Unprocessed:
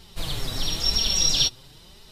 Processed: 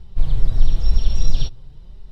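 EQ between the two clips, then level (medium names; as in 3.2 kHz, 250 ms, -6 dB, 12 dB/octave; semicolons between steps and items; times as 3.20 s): tilt EQ -4.5 dB/octave; peaking EQ 260 Hz -5.5 dB 1 oct; -6.5 dB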